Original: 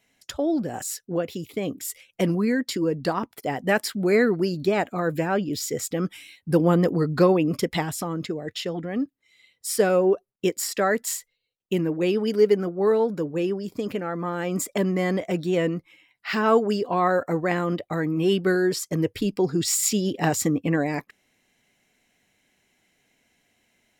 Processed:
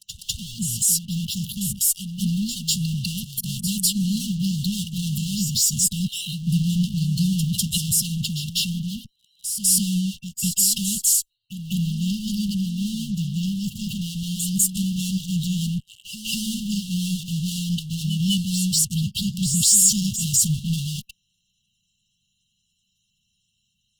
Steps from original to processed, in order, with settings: coarse spectral quantiser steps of 30 dB; in parallel at -11 dB: fuzz box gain 44 dB, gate -51 dBFS; on the sum: dynamic bell 9.4 kHz, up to +6 dB, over -37 dBFS, Q 1; brick-wall FIR band-stop 220–2700 Hz; on a send: reverse echo 199 ms -9.5 dB

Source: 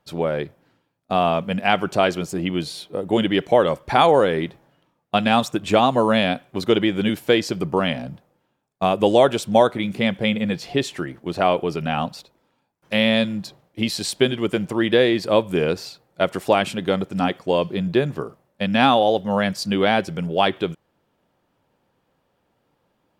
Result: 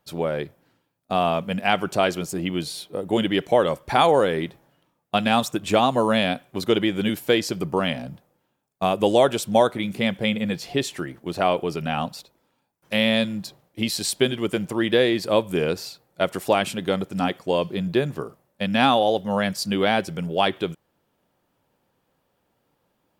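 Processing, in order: treble shelf 7.9 kHz +10 dB; trim -2.5 dB

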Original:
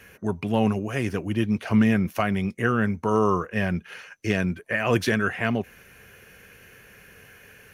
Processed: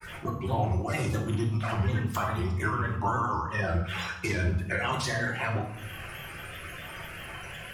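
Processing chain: coarse spectral quantiser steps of 30 dB; graphic EQ 125/250/500/1000/2000/4000/8000 Hz +6/-10/-4/+9/-5/+4/+4 dB; compression 6:1, threshold -37 dBFS, peak gain reduction 20.5 dB; granulator, spray 26 ms, pitch spread up and down by 3 st; reverberation RT60 0.80 s, pre-delay 3 ms, DRR -0.5 dB; trim +8 dB

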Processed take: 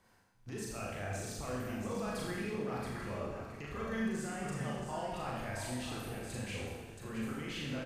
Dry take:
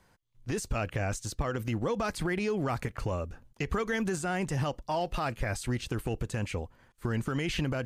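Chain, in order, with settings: peak limiter -30.5 dBFS, peak gain reduction 10.5 dB; bass shelf 65 Hz -9.5 dB; multi-tap echo 40/677 ms -4/-6.5 dB; Schroeder reverb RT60 1.2 s, combs from 28 ms, DRR -2.5 dB; dynamic bell 6.3 kHz, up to -4 dB, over -54 dBFS, Q 0.84; trim -5 dB

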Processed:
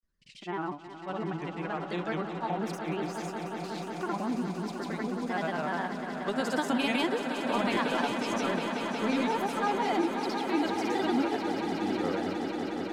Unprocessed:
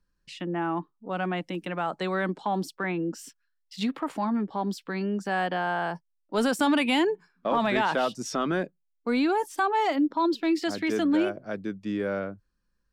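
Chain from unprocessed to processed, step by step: granulator, pitch spread up and down by 3 st; echo with a slow build-up 181 ms, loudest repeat 5, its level -10 dB; endings held to a fixed fall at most 180 dB/s; trim -4 dB

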